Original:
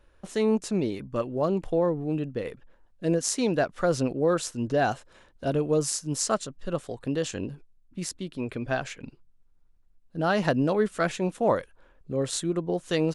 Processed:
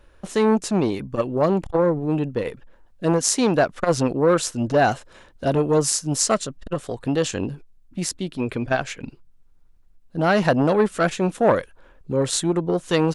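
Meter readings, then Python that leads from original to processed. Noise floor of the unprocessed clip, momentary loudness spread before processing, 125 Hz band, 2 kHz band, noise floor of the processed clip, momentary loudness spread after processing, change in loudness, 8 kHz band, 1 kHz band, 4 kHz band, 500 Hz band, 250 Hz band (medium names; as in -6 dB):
-61 dBFS, 10 LU, +6.0 dB, +6.0 dB, -53 dBFS, 11 LU, +6.0 dB, +7.5 dB, +7.0 dB, +6.5 dB, +5.5 dB, +5.5 dB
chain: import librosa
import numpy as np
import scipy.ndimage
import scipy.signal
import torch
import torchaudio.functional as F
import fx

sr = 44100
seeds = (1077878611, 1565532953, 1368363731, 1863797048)

y = fx.transformer_sat(x, sr, knee_hz=820.0)
y = y * librosa.db_to_amplitude(7.5)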